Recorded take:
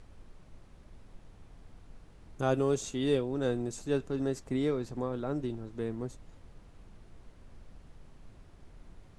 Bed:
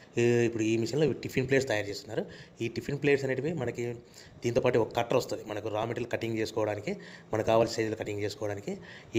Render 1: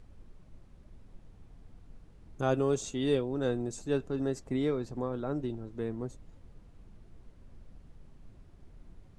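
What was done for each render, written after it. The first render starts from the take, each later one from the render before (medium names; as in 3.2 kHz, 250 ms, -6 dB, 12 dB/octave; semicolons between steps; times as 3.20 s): noise reduction 6 dB, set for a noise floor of -56 dBFS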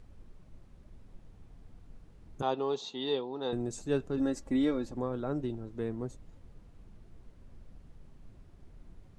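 2.42–3.53 s: cabinet simulation 300–4700 Hz, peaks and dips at 310 Hz -7 dB, 590 Hz -8 dB, 880 Hz +9 dB, 1.5 kHz -9 dB, 2.3 kHz -7 dB, 4 kHz +10 dB; 4.17–4.94 s: comb 3.6 ms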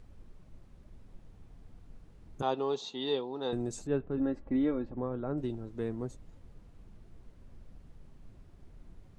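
3.87–5.38 s: distance through air 460 m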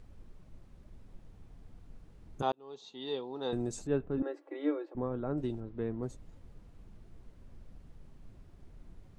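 2.52–3.59 s: fade in; 4.22–4.95 s: Chebyshev high-pass 290 Hz, order 10; 5.60–6.03 s: distance through air 240 m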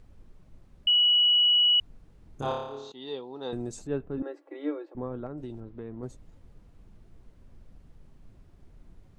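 0.87–1.80 s: bleep 2.93 kHz -18 dBFS; 2.39–2.92 s: flutter echo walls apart 4.9 m, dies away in 0.91 s; 5.26–6.03 s: compression 3:1, threshold -35 dBFS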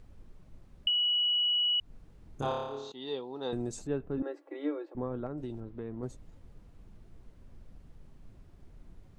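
compression, threshold -27 dBFS, peak gain reduction 7 dB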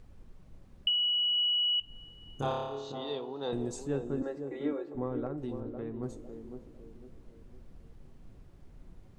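band-passed feedback delay 504 ms, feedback 43%, band-pass 360 Hz, level -6 dB; two-slope reverb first 0.3 s, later 3 s, from -18 dB, DRR 12 dB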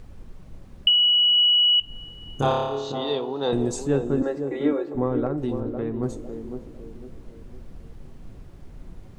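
trim +10.5 dB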